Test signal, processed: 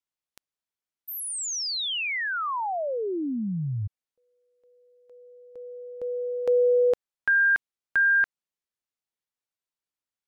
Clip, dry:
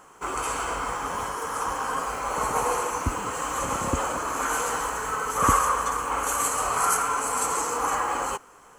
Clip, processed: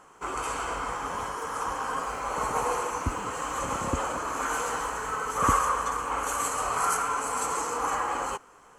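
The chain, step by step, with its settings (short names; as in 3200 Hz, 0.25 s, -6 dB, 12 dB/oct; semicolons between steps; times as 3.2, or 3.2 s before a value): high shelf 11000 Hz -10 dB; gain -2.5 dB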